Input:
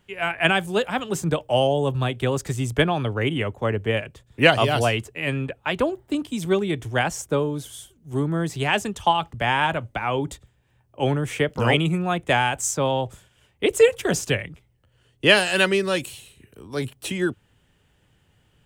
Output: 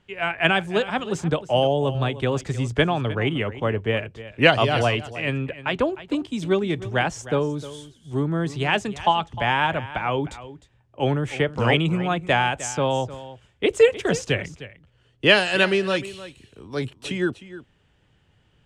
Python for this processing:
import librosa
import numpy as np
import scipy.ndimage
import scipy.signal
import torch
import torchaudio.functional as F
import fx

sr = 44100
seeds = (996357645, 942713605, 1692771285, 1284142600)

p1 = scipy.signal.sosfilt(scipy.signal.butter(2, 5800.0, 'lowpass', fs=sr, output='sos'), x)
y = p1 + fx.echo_single(p1, sr, ms=307, db=-15.5, dry=0)